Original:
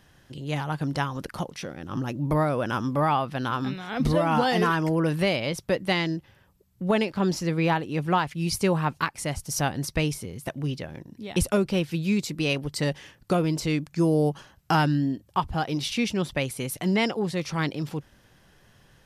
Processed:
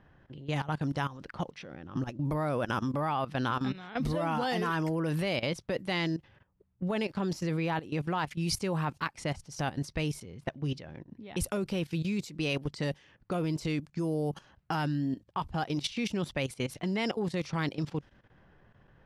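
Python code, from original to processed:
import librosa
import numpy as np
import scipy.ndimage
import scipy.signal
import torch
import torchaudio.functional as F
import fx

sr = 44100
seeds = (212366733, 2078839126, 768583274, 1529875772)

y = fx.env_lowpass(x, sr, base_hz=1600.0, full_db=-22.0)
y = fx.level_steps(y, sr, step_db=15)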